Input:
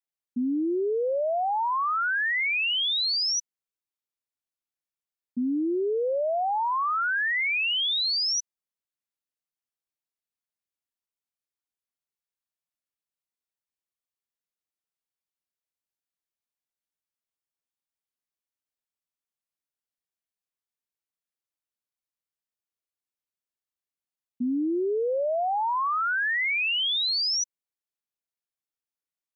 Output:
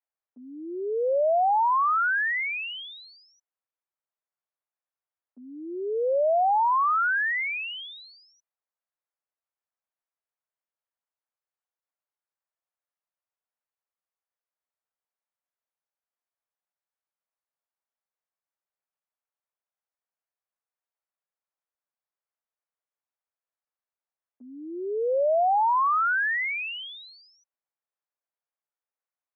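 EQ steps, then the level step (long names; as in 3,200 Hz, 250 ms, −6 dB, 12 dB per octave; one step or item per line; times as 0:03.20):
high-pass filter 520 Hz 24 dB per octave
low-pass filter 2,000 Hz
high-frequency loss of the air 490 metres
+6.5 dB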